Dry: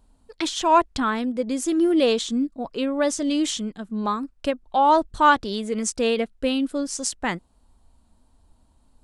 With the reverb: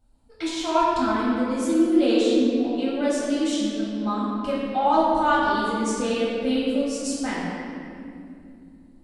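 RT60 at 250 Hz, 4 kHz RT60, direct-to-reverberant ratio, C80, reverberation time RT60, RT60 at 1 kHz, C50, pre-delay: 4.2 s, 1.6 s, -9.5 dB, -1.0 dB, 2.6 s, 2.1 s, -2.5 dB, 4 ms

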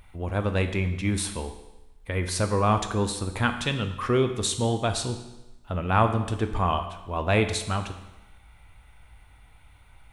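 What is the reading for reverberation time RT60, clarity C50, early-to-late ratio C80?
1.0 s, 9.5 dB, 11.5 dB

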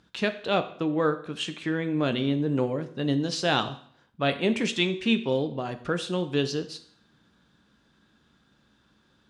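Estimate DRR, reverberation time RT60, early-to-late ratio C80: 8.5 dB, 0.60 s, 16.5 dB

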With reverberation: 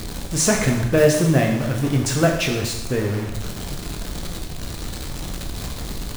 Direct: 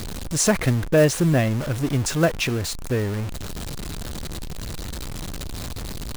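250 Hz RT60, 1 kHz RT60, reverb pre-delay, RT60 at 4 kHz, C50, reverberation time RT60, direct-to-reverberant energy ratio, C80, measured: 1.0 s, 1.0 s, 7 ms, 0.95 s, 5.0 dB, 1.0 s, 1.0 dB, 7.5 dB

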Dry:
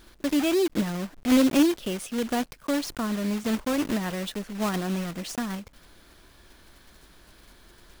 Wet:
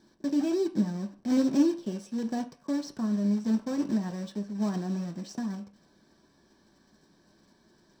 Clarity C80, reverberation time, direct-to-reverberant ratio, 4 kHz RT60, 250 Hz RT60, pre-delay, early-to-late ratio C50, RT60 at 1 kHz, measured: 18.0 dB, 0.40 s, 3.5 dB, 0.40 s, 0.35 s, 3 ms, 14.5 dB, 0.45 s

